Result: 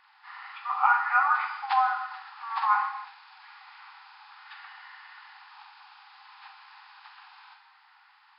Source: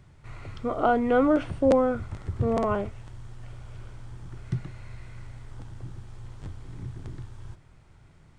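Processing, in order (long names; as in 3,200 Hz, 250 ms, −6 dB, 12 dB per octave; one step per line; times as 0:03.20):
hearing-aid frequency compression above 1,400 Hz 1.5 to 1
reverb whose tail is shaped and stops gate 340 ms falling, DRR 3 dB
brick-wall band-pass 750–5,400 Hz
level +7 dB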